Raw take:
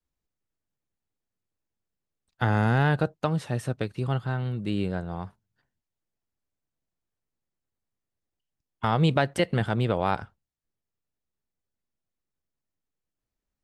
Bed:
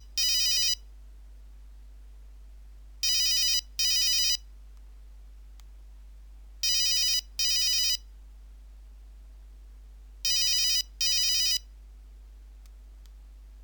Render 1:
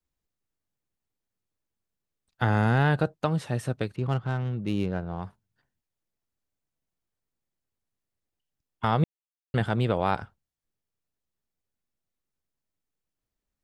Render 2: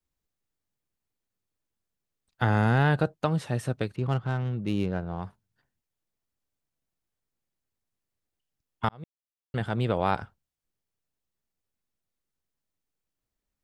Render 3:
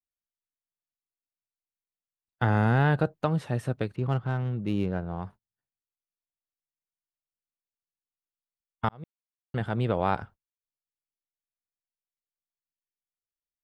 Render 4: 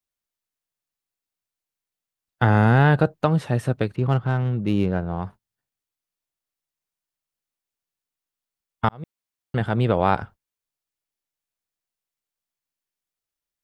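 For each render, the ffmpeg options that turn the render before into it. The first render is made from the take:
-filter_complex "[0:a]asettb=1/sr,asplit=3[a][b][c];[a]atrim=end=3.964[d];[b]atrim=start=3.96:end=5.22,asetpts=PTS-STARTPTS,afade=t=in:d=0.004:c=qsin,afade=t=out:st=1.256:d=0.004:c=qsin,adynamicsmooth=sensitivity=7.5:basefreq=1.9k[e];[c]atrim=start=5.216[f];[d][e]acrossfade=d=0.004:c1=hsin:c2=qsin[g];[g][f]acrossfade=d=0.004:c1=qsin:c2=hsin,asplit=3[h][i][j];[h]atrim=end=9.04,asetpts=PTS-STARTPTS,afade=t=out:st=9.036:d=0.004:c=hsin[k];[i]atrim=start=9.04:end=9.54,asetpts=PTS-STARTPTS,volume=0[l];[j]atrim=start=9.54,asetpts=PTS-STARTPTS,afade=t=in:d=0.004:c=hsin[m];[k][l][m]concat=n=3:v=0:a=1"
-filter_complex "[0:a]asplit=2[a][b];[a]atrim=end=8.89,asetpts=PTS-STARTPTS,afade=t=out:st=8.886:d=0.004:c=hsin[c];[b]atrim=start=8.89,asetpts=PTS-STARTPTS,afade=t=in:d=1.15[d];[c][d]concat=n=2:v=0:a=1"
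-af "agate=range=-21dB:threshold=-47dB:ratio=16:detection=peak,equalizer=f=7.5k:w=0.44:g=-6.5"
-af "volume=6.5dB"

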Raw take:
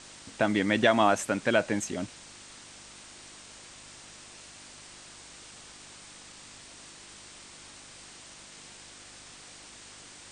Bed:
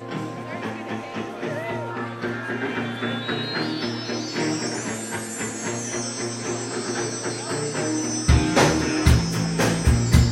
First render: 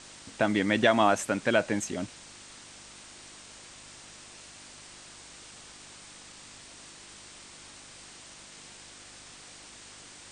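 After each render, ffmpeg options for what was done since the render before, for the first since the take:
-af anull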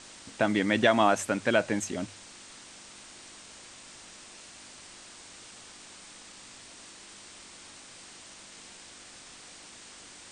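-af "bandreject=f=50:t=h:w=4,bandreject=f=100:t=h:w=4,bandreject=f=150:t=h:w=4"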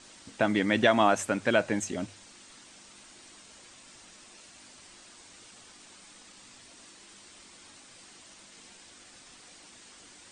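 -af "afftdn=nr=6:nf=-50"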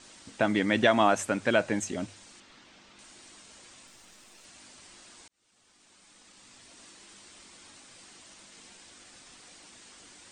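-filter_complex "[0:a]asettb=1/sr,asplit=3[a][b][c];[a]atrim=end=2.404[d];[b]atrim=start=2.4:end=2.99,asetpts=PTS-STARTPTS,afade=t=in:d=0.004:c=qsin,afade=t=out:st=0.586:d=0.004:c=qsin,lowpass=4.1k[e];[c]atrim=start=2.986[f];[d][e]acrossfade=d=0.004:c1=hsin:c2=qsin[g];[g][f]acrossfade=d=0.004:c1=qsin:c2=hsin,asettb=1/sr,asplit=3[h][i][j];[h]atrim=end=3.874[k];[i]atrim=start=3.87:end=4.45,asetpts=PTS-STARTPTS,afade=t=in:d=0.004:c=qsin,afade=t=out:st=0.576:d=0.004:c=qsin,aeval=exprs='if(lt(val(0),0),0.447*val(0),val(0))':c=same[l];[j]atrim=start=4.446[m];[k][l]acrossfade=d=0.004:c1=hsin:c2=qsin[n];[n][m]acrossfade=d=0.004:c1=qsin:c2=hsin,asplit=2[o][p];[o]atrim=end=5.28,asetpts=PTS-STARTPTS,afade=t=out:st=5.276:d=0.004:c=hsin[q];[p]atrim=start=5.28,asetpts=PTS-STARTPTS,afade=t=in:d=1.57[r];[q][r]concat=n=2:v=0:a=1"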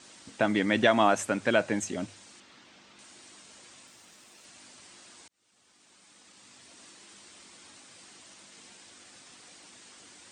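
-af "highpass=86"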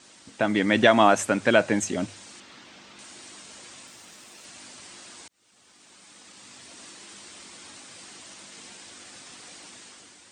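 -af "dynaudnorm=f=100:g=11:m=7dB"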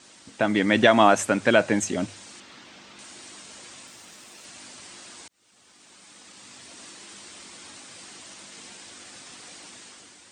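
-af "volume=1dB,alimiter=limit=-3dB:level=0:latency=1"

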